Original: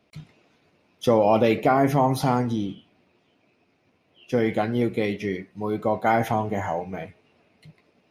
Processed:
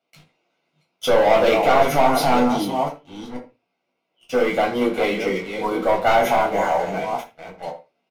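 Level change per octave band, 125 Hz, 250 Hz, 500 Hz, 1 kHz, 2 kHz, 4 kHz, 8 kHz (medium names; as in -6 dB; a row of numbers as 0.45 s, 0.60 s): -6.0 dB, +0.5 dB, +5.0 dB, +6.0 dB, +7.5 dB, +9.5 dB, +8.5 dB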